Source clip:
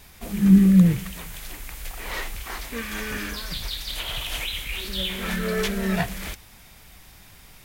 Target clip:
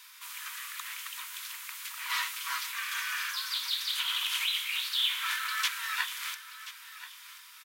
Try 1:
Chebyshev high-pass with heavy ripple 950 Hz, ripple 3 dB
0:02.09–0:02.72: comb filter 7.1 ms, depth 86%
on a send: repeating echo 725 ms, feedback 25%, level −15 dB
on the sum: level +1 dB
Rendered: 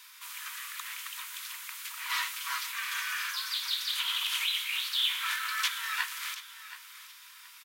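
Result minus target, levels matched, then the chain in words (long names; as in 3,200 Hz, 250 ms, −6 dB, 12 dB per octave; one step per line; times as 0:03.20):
echo 306 ms early
Chebyshev high-pass with heavy ripple 950 Hz, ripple 3 dB
0:02.09–0:02.72: comb filter 7.1 ms, depth 86%
on a send: repeating echo 1,031 ms, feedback 25%, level −15 dB
on the sum: level +1 dB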